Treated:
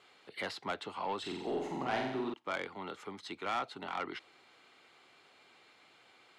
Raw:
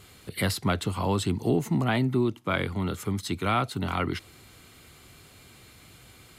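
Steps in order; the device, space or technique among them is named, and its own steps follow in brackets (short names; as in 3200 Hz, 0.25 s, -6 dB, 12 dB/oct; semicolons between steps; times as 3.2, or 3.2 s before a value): intercom (BPF 440–3800 Hz; bell 840 Hz +5 dB 0.27 oct; soft clip -21 dBFS, distortion -14 dB); 1.19–2.34 flutter echo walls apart 7.8 m, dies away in 0.86 s; gain -6 dB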